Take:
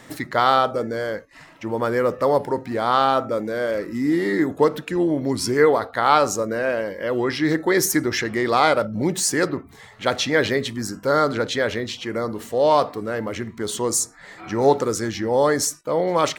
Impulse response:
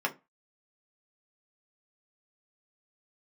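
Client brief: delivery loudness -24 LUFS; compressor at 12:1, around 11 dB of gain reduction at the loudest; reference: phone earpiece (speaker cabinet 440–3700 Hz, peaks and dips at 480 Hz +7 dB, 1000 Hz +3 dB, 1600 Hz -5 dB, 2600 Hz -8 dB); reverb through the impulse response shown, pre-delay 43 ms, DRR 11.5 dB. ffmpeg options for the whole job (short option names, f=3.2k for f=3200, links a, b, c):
-filter_complex "[0:a]acompressor=threshold=-22dB:ratio=12,asplit=2[a][b];[1:a]atrim=start_sample=2205,adelay=43[c];[b][c]afir=irnorm=-1:irlink=0,volume=-20dB[d];[a][d]amix=inputs=2:normalize=0,highpass=440,equalizer=f=480:t=q:w=4:g=7,equalizer=f=1k:t=q:w=4:g=3,equalizer=f=1.6k:t=q:w=4:g=-5,equalizer=f=2.6k:t=q:w=4:g=-8,lowpass=f=3.7k:w=0.5412,lowpass=f=3.7k:w=1.3066,volume=4dB"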